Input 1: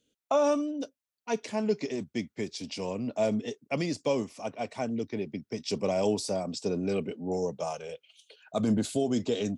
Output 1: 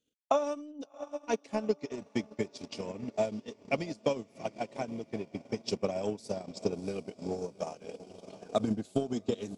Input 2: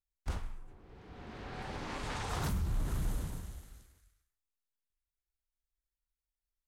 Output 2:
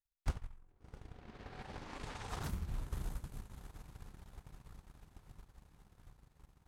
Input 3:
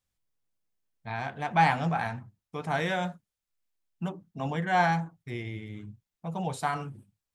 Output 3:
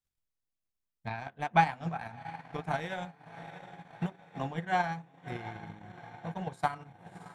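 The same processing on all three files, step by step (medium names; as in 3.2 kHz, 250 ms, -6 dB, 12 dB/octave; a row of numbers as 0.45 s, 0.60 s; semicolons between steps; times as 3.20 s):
echo that smears into a reverb 687 ms, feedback 70%, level -12 dB; transient shaper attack +12 dB, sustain -11 dB; trim -9 dB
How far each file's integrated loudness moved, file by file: -4.0 LU, -8.0 LU, -4.5 LU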